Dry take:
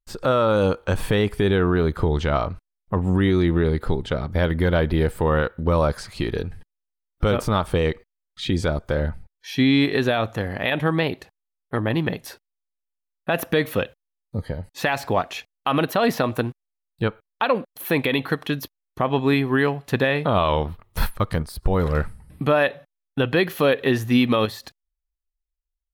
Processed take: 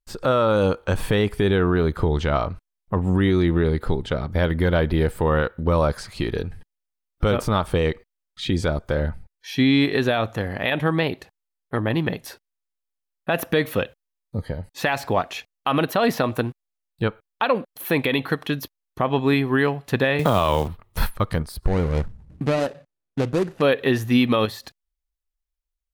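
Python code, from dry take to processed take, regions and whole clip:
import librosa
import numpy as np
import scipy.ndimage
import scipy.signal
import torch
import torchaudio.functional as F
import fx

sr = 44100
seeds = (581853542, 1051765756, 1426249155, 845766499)

y = fx.chain(x, sr, fx.quant_companded(bits=6),
    fx.band_squash(depth_pct=70), at=(20.19, 20.68))
y = fx.chain(y, sr, fx.median_filter(points=41),
    fx.lowpass(hz=12000.0, slope=24), at=(21.66, 23.62))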